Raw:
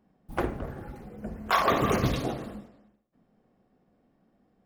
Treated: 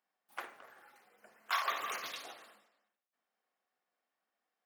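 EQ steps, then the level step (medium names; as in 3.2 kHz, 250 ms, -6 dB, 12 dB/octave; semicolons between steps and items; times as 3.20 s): high-pass 1.3 kHz 12 dB/octave; -5.5 dB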